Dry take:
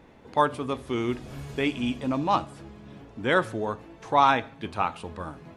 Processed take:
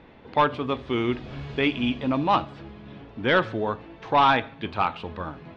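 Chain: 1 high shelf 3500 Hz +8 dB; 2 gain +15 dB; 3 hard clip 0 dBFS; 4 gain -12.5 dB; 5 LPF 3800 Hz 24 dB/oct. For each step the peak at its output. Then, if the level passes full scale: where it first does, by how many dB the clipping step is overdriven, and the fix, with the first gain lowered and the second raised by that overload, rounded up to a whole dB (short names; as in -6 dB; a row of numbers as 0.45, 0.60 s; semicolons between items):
-6.0, +9.0, 0.0, -12.5, -11.0 dBFS; step 2, 9.0 dB; step 2 +6 dB, step 4 -3.5 dB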